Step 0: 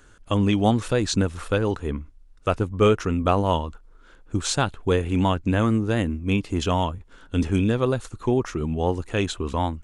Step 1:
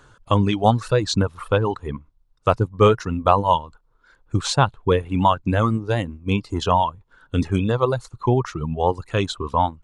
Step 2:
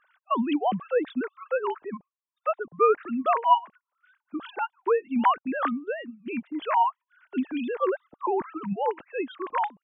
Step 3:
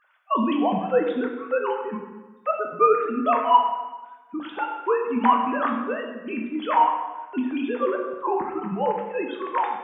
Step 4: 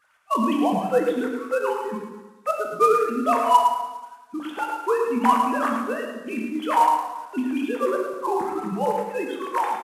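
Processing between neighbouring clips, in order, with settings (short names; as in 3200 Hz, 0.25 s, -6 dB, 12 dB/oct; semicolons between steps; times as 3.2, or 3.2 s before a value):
reverb removal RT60 1.7 s; graphic EQ 125/500/1000/4000 Hz +12/+5/+12/+7 dB; gain -3.5 dB
sine-wave speech; gain -6.5 dB
plate-style reverb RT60 1.2 s, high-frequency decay 0.8×, DRR 1 dB; gain +1 dB
CVSD 64 kbps; on a send: echo 0.11 s -7.5 dB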